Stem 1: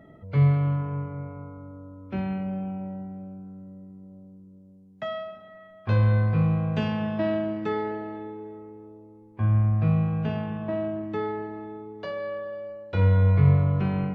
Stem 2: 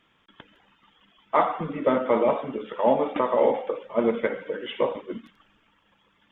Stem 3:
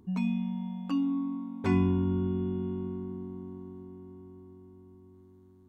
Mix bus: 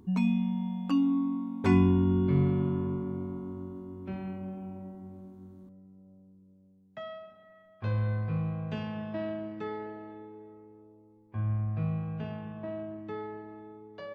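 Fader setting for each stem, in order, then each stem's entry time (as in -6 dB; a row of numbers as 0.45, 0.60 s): -9.0 dB, off, +3.0 dB; 1.95 s, off, 0.00 s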